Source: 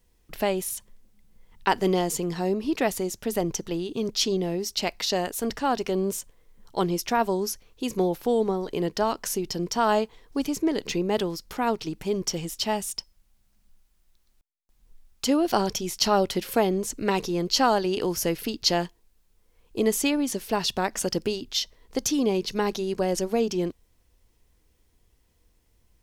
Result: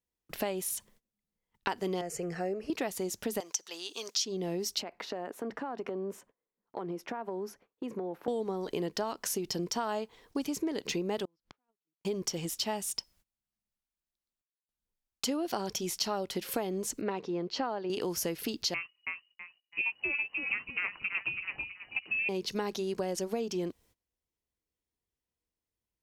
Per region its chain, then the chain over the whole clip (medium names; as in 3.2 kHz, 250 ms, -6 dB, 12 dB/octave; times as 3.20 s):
2.01–2.70 s: distance through air 53 m + static phaser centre 980 Hz, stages 6
3.40–4.25 s: high-pass 920 Hz + peaking EQ 6.1 kHz +9.5 dB 0.98 oct
4.82–8.28 s: three-band isolator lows -17 dB, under 170 Hz, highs -21 dB, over 2 kHz + compression 12:1, threshold -31 dBFS
11.25–12.05 s: low-pass 3.1 kHz + inverted gate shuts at -29 dBFS, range -39 dB
17.01–17.90 s: high-pass 240 Hz 6 dB/octave + tape spacing loss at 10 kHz 30 dB
18.74–22.29 s: frequency-shifting echo 325 ms, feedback 43%, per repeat +56 Hz, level -6 dB + frequency inversion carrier 2.9 kHz + upward expansion, over -42 dBFS
whole clip: high-pass 130 Hz 6 dB/octave; gate -58 dBFS, range -22 dB; compression, threshold -30 dBFS